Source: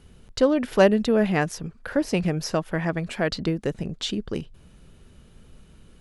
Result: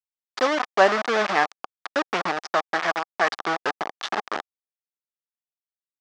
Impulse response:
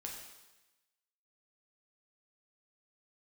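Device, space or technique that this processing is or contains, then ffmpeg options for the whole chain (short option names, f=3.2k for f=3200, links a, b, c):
hand-held game console: -af "acrusher=bits=3:mix=0:aa=0.000001,highpass=480,equalizer=f=510:t=q:w=4:g=-4,equalizer=f=780:t=q:w=4:g=6,equalizer=f=1.2k:t=q:w=4:g=8,equalizer=f=1.7k:t=q:w=4:g=4,equalizer=f=2.8k:t=q:w=4:g=-3,equalizer=f=4.1k:t=q:w=4:g=-4,lowpass=f=5.2k:w=0.5412,lowpass=f=5.2k:w=1.3066,volume=1dB"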